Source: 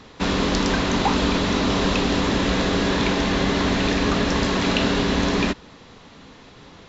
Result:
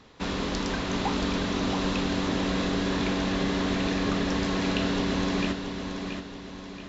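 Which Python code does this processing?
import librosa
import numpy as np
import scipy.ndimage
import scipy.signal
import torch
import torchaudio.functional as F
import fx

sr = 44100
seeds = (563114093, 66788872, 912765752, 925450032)

y = fx.echo_feedback(x, sr, ms=678, feedback_pct=46, wet_db=-7)
y = F.gain(torch.from_numpy(y), -8.5).numpy()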